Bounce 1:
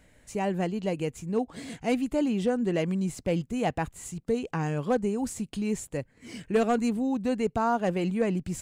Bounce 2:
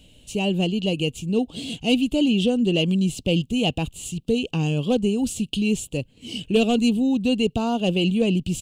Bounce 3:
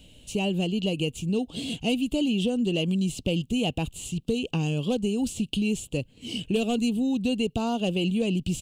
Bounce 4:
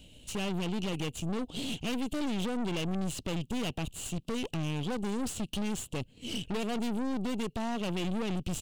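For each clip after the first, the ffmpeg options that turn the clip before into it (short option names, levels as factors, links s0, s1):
-af "firequalizer=gain_entry='entry(250,0);entry(970,-12);entry(1900,-22);entry(2800,12);entry(5100,-1)':delay=0.05:min_phase=1,volume=2.37"
-filter_complex "[0:a]acrossover=split=3200|7200[s0][s1][s2];[s0]acompressor=threshold=0.0708:ratio=4[s3];[s1]acompressor=threshold=0.00794:ratio=4[s4];[s2]acompressor=threshold=0.00794:ratio=4[s5];[s3][s4][s5]amix=inputs=3:normalize=0"
-af "aeval=exprs='(tanh(44.7*val(0)+0.75)-tanh(0.75))/44.7':c=same,volume=1.26"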